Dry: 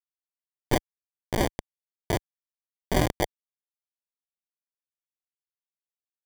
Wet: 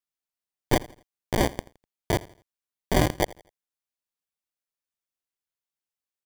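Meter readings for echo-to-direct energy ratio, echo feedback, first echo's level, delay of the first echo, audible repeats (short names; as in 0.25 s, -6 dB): -20.0 dB, 35%, -20.5 dB, 83 ms, 2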